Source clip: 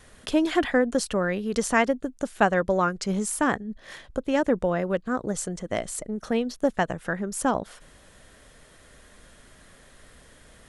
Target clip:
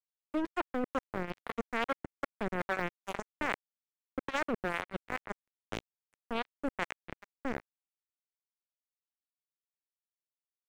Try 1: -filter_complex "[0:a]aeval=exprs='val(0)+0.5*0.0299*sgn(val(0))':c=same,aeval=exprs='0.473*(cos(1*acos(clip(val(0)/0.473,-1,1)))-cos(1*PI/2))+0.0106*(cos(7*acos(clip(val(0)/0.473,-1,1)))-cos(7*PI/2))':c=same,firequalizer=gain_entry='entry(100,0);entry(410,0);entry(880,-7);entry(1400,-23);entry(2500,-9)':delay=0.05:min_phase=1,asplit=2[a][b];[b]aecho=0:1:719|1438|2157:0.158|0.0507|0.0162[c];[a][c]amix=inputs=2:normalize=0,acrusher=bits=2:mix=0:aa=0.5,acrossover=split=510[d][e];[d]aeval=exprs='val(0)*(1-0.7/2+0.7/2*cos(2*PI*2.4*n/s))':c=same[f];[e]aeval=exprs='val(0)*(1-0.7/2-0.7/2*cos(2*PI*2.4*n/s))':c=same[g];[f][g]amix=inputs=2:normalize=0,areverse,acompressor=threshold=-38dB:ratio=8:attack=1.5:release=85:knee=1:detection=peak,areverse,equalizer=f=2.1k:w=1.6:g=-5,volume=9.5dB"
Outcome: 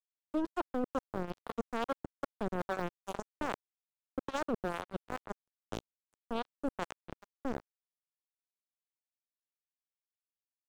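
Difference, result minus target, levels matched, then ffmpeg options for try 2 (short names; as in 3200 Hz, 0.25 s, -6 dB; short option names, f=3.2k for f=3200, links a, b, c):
2000 Hz band -6.0 dB
-filter_complex "[0:a]aeval=exprs='val(0)+0.5*0.0299*sgn(val(0))':c=same,aeval=exprs='0.473*(cos(1*acos(clip(val(0)/0.473,-1,1)))-cos(1*PI/2))+0.0106*(cos(7*acos(clip(val(0)/0.473,-1,1)))-cos(7*PI/2))':c=same,firequalizer=gain_entry='entry(100,0);entry(410,0);entry(880,-7);entry(1400,-23);entry(2500,-9)':delay=0.05:min_phase=1,asplit=2[a][b];[b]aecho=0:1:719|1438|2157:0.158|0.0507|0.0162[c];[a][c]amix=inputs=2:normalize=0,acrusher=bits=2:mix=0:aa=0.5,acrossover=split=510[d][e];[d]aeval=exprs='val(0)*(1-0.7/2+0.7/2*cos(2*PI*2.4*n/s))':c=same[f];[e]aeval=exprs='val(0)*(1-0.7/2-0.7/2*cos(2*PI*2.4*n/s))':c=same[g];[f][g]amix=inputs=2:normalize=0,areverse,acompressor=threshold=-38dB:ratio=8:attack=1.5:release=85:knee=1:detection=peak,areverse,equalizer=f=2.1k:w=1.6:g=7,volume=9.5dB"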